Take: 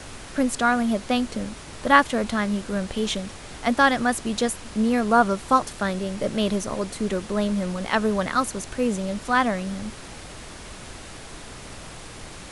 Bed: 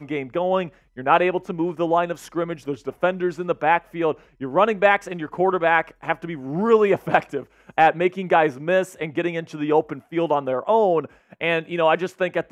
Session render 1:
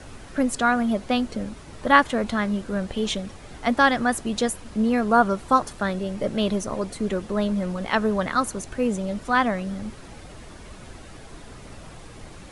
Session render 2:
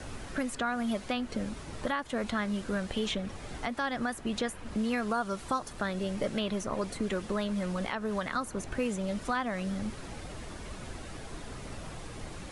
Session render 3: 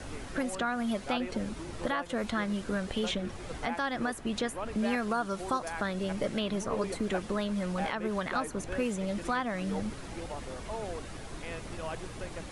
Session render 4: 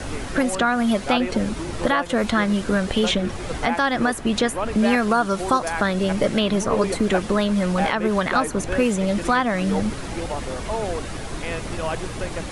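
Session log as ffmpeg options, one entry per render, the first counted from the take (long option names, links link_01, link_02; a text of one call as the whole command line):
ffmpeg -i in.wav -af "afftdn=noise_reduction=8:noise_floor=-40" out.wav
ffmpeg -i in.wav -filter_complex "[0:a]acrossover=split=1100|2900[link_01][link_02][link_03];[link_01]acompressor=threshold=-30dB:ratio=4[link_04];[link_02]acompressor=threshold=-32dB:ratio=4[link_05];[link_03]acompressor=threshold=-43dB:ratio=4[link_06];[link_04][link_05][link_06]amix=inputs=3:normalize=0,alimiter=limit=-20dB:level=0:latency=1:release=205" out.wav
ffmpeg -i in.wav -i bed.wav -filter_complex "[1:a]volume=-21dB[link_01];[0:a][link_01]amix=inputs=2:normalize=0" out.wav
ffmpeg -i in.wav -af "volume=11.5dB" out.wav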